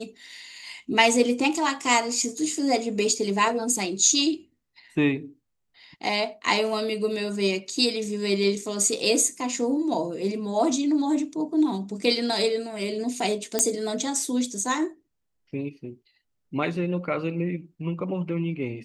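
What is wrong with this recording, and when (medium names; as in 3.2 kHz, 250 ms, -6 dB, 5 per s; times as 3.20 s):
13.59 s: pop -7 dBFS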